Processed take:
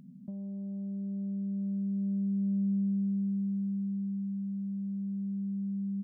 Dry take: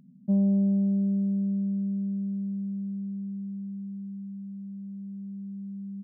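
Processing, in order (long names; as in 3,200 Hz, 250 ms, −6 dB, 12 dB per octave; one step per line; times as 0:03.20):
compressor whose output falls as the input rises −32 dBFS, ratio −1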